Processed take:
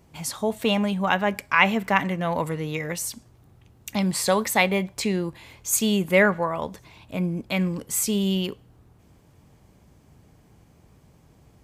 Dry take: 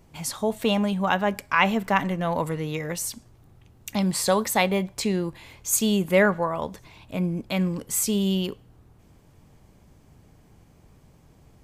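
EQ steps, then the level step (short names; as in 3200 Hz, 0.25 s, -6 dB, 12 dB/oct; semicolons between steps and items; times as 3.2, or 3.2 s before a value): HPF 42 Hz; dynamic EQ 2200 Hz, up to +5 dB, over -41 dBFS, Q 2; 0.0 dB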